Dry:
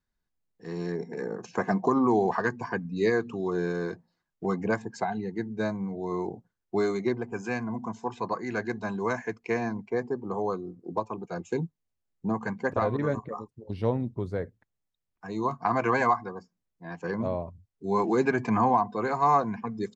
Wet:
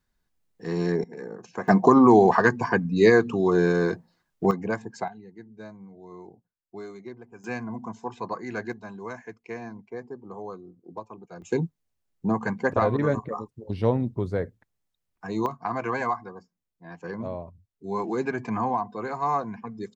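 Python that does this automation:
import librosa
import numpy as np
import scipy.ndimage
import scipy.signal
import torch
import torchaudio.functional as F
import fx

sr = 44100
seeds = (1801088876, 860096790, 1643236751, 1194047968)

y = fx.gain(x, sr, db=fx.steps((0.0, 7.0), (1.04, -4.0), (1.68, 8.0), (4.51, -1.0), (5.08, -13.0), (7.44, -1.5), (8.73, -8.0), (11.42, 4.0), (15.46, -3.5)))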